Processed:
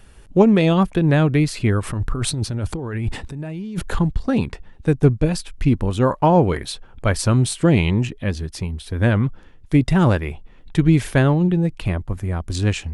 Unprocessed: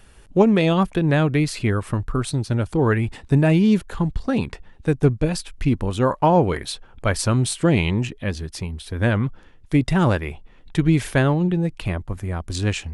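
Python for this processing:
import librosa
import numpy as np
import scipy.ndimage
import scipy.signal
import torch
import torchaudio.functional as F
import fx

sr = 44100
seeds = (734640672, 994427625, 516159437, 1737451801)

y = fx.over_compress(x, sr, threshold_db=-27.0, ratio=-1.0, at=(1.83, 3.99))
y = fx.low_shelf(y, sr, hz=380.0, db=3.5)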